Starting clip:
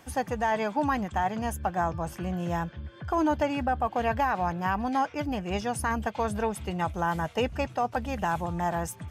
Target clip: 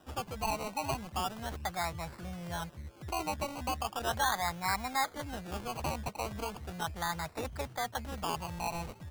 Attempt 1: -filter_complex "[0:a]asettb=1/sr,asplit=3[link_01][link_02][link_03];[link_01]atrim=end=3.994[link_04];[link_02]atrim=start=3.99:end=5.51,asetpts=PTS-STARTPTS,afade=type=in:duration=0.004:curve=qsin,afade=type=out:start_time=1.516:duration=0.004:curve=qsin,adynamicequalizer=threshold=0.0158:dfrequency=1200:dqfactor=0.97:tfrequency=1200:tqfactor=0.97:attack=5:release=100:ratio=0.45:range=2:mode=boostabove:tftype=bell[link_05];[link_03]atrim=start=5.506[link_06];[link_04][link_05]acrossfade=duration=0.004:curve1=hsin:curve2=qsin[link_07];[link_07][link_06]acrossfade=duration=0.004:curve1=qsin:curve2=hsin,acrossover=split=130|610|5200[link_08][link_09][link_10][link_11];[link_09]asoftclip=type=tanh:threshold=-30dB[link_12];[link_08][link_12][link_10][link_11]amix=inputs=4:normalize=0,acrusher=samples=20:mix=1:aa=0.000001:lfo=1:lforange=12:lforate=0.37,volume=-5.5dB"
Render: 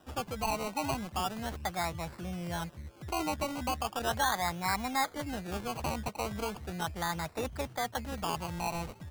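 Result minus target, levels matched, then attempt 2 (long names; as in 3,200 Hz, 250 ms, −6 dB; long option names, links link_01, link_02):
soft clipping: distortion −8 dB
-filter_complex "[0:a]asettb=1/sr,asplit=3[link_01][link_02][link_03];[link_01]atrim=end=3.994[link_04];[link_02]atrim=start=3.99:end=5.51,asetpts=PTS-STARTPTS,afade=type=in:duration=0.004:curve=qsin,afade=type=out:start_time=1.516:duration=0.004:curve=qsin,adynamicequalizer=threshold=0.0158:dfrequency=1200:dqfactor=0.97:tfrequency=1200:tqfactor=0.97:attack=5:release=100:ratio=0.45:range=2:mode=boostabove:tftype=bell[link_05];[link_03]atrim=start=5.506[link_06];[link_04][link_05]acrossfade=duration=0.004:curve1=hsin:curve2=qsin[link_07];[link_07][link_06]acrossfade=duration=0.004:curve1=qsin:curve2=hsin,acrossover=split=130|610|5200[link_08][link_09][link_10][link_11];[link_09]asoftclip=type=tanh:threshold=-41dB[link_12];[link_08][link_12][link_10][link_11]amix=inputs=4:normalize=0,acrusher=samples=20:mix=1:aa=0.000001:lfo=1:lforange=12:lforate=0.37,volume=-5.5dB"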